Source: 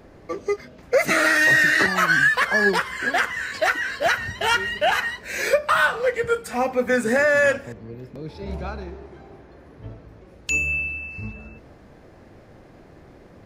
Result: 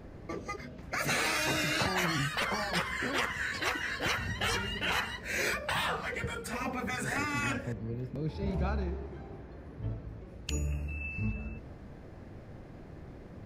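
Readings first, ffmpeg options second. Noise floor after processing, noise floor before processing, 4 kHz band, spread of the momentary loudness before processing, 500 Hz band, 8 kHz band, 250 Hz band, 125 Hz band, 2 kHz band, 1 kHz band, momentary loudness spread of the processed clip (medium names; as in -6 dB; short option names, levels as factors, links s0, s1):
-48 dBFS, -48 dBFS, -5.5 dB, 18 LU, -16.0 dB, -6.0 dB, -6.5 dB, +0.5 dB, -14.0 dB, -10.5 dB, 20 LU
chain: -af "afftfilt=real='re*lt(hypot(re,im),0.282)':imag='im*lt(hypot(re,im),0.282)':win_size=1024:overlap=0.75,bass=f=250:g=7,treble=f=4000:g=-2,volume=0.631"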